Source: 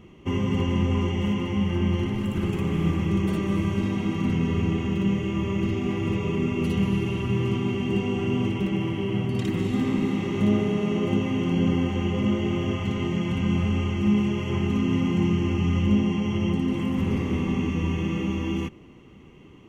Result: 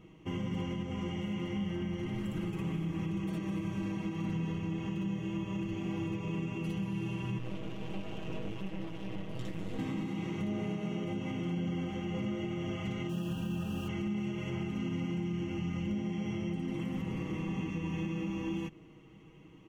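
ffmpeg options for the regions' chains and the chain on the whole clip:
-filter_complex "[0:a]asettb=1/sr,asplit=3[a][b][c];[a]atrim=end=7.384[d];[b]atrim=start=7.38:end=9.79,asetpts=PTS-STARTPTS,afade=t=in:d=0.004:c=qsin,afade=t=out:st=2.406:d=0.004:c=qsin,flanger=delay=16:depth=5:speed=2.4,aeval=exprs='max(val(0),0)':c=same[e];[c]atrim=start=9.786[f];[d][e]acrossfade=d=0.004:c1=hsin:c2=qsin[g];[g][f]acrossfade=d=0.004:c1=qsin:c2=hsin,asettb=1/sr,asplit=3[h][i][j];[h]atrim=end=13.094[k];[i]atrim=start=13.09:end=13.88,asetpts=PTS-STARTPTS,afade=t=in:d=0.004:c=qsin,afade=t=out:st=0.786:d=0.004:c=qsin,acrusher=bits=6:mix=0:aa=0.5,asuperstop=centerf=2100:order=20:qfactor=4.5[l];[j]atrim=start=13.876[m];[k][l]acrossfade=d=0.004:c1=hsin:c2=qsin[n];[n][m]acrossfade=d=0.004:c1=qsin:c2=hsin,aecho=1:1:6.3:0.66,alimiter=limit=-19dB:level=0:latency=1:release=191,volume=-8dB"

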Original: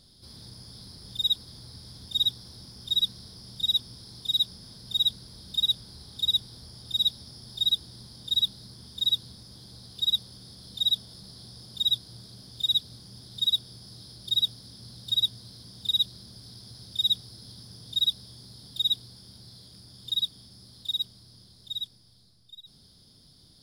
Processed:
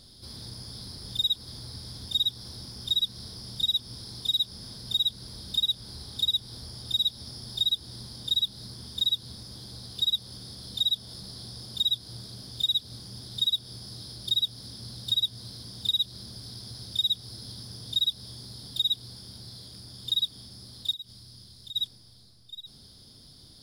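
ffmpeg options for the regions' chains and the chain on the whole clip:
-filter_complex "[0:a]asettb=1/sr,asplit=3[a][b][c];[a]atrim=end=20.914[d];[b]atrim=start=20.91:end=21.76,asetpts=PTS-STARTPTS,afade=t=in:d=0.004:c=qsin,afade=t=out:st=0.846:d=0.004:c=qsin,equalizer=f=610:w=0.41:g=-5,acompressor=threshold=-41dB:ratio=16:attack=3.2:release=140:knee=1:detection=peak[e];[c]atrim=start=21.756[f];[d][e]acrossfade=d=0.004:c1=hsin:c2=qsin[g];[g][f]acrossfade=d=0.004:c1=qsin:c2=hsin,equalizer=f=170:t=o:w=0.22:g=-6.5,acompressor=threshold=-28dB:ratio=6,volume=5dB"

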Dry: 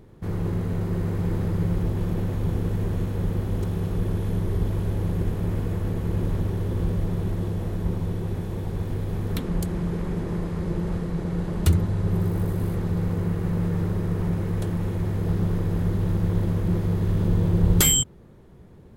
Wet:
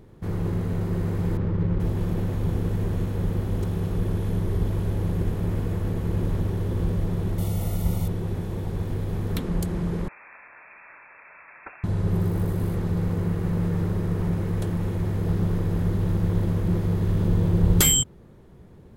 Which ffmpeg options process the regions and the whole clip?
-filter_complex "[0:a]asettb=1/sr,asplit=3[a][b][c];[a]atrim=end=1.374[d];[b]atrim=start=1.37:end=1.8,asetpts=PTS-STARTPTS,afade=t=in:d=0.004:c=qsin,afade=t=out:st=0.426:d=0.004:c=qsin,bandreject=f=720:w=6.4,adynamicsmooth=sensitivity=5:basefreq=1.5k[e];[c]atrim=start=1.796[f];[d][e]acrossfade=d=0.004:c1=hsin:c2=qsin[g];[g][f]acrossfade=d=0.004:c1=qsin:c2=hsin,asettb=1/sr,asplit=3[h][i][j];[h]atrim=end=7.384[k];[i]atrim=start=7.38:end=8.08,asetpts=PTS-STARTPTS,afade=t=in:d=0.004:c=qsin,afade=t=out:st=0.696:d=0.004:c=qsin,asuperstop=centerf=1600:order=12:qfactor=6.1,aemphasis=mode=production:type=75kf,aecho=1:1:1.4:0.38,atrim=end_sample=30870[l];[j]atrim=start=8.076[m];[k][l]acrossfade=d=0.004:c1=hsin:c2=qsin[n];[n][m]acrossfade=d=0.004:c1=qsin:c2=hsin,asettb=1/sr,asplit=3[o][p][q];[o]atrim=end=10.084[r];[p]atrim=start=10.08:end=11.84,asetpts=PTS-STARTPTS,afade=t=in:d=0.004:c=qsin,afade=t=out:st=1.756:d=0.004:c=qsin,highpass=1.2k,lowpass=f=2.4k:t=q:w=0.5098,lowpass=f=2.4k:t=q:w=0.6013,lowpass=f=2.4k:t=q:w=0.9,lowpass=f=2.4k:t=q:w=2.563,afreqshift=-2800[s];[q]atrim=start=11.836[t];[r][s]acrossfade=d=0.004:c1=hsin:c2=qsin[u];[u][t]acrossfade=d=0.004:c1=qsin:c2=hsin"

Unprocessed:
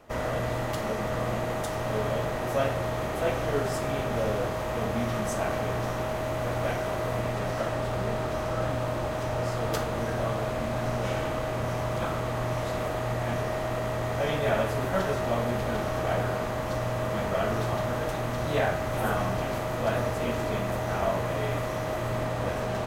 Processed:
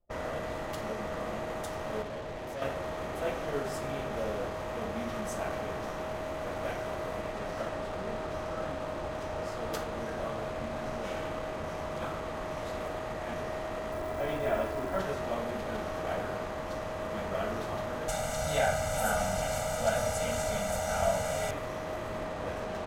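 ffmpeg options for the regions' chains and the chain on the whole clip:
-filter_complex "[0:a]asettb=1/sr,asplit=3[a][b][c];[a]atrim=end=2.024[d];[b]atrim=start=2.02:end=2.62,asetpts=PTS-STARTPTS,afade=t=in:d=0.004:c=qsin,afade=t=out:st=0.596:d=0.004:c=qsin,equalizer=f=1.4k:w=2.2:g=-7,asoftclip=type=hard:threshold=-30dB[e];[c]atrim=start=2.616[f];[d][e]acrossfade=d=0.004:c1=hsin:c2=qsin[g];[g][f]acrossfade=d=0.004:c1=qsin:c2=hsin,asettb=1/sr,asplit=3[h][i][j];[h]atrim=end=13.924[k];[i]atrim=start=13.92:end=14.99,asetpts=PTS-STARTPTS,afade=t=in:d=0.004:c=qsin,afade=t=out:st=1.066:d=0.004:c=qsin,aemphasis=mode=reproduction:type=75fm,aecho=1:1:3:0.37,atrim=end_sample=47187,acrusher=bits=8:dc=4:mix=0:aa=0.000001[l];[j]atrim=start=14.986[m];[k][l]acrossfade=d=0.004:c1=hsin:c2=qsin[n];[n][m]acrossfade=d=0.004:c1=qsin:c2=hsin,asettb=1/sr,asplit=3[o][p][q];[o]atrim=end=18.084[r];[p]atrim=start=18.08:end=21.51,asetpts=PTS-STARTPTS,afade=t=in:d=0.004:c=qsin,afade=t=out:st=3.426:d=0.004:c=qsin,equalizer=f=7.8k:t=o:w=1.2:g=14.5,aecho=1:1:1.4:0.92,atrim=end_sample=151263[s];[q]atrim=start=21.506[t];[r][s]acrossfade=d=0.004:c1=hsin:c2=qsin[u];[u][t]acrossfade=d=0.004:c1=qsin:c2=hsin,anlmdn=0.251,bandreject=f=60:t=h:w=6,bandreject=f=120:t=h:w=6,bandreject=f=180:t=h:w=6,bandreject=f=240:t=h:w=6,volume=-5.5dB"

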